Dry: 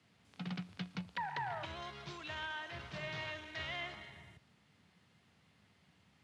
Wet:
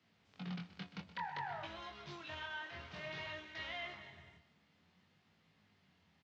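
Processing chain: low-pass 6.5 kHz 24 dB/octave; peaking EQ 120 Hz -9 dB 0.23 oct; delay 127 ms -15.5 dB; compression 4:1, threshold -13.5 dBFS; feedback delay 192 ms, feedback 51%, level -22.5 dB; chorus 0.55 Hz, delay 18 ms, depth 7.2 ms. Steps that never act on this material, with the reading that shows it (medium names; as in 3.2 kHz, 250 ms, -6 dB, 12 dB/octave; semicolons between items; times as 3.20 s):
compression, threshold -13.5 dBFS: peak at its input -28.5 dBFS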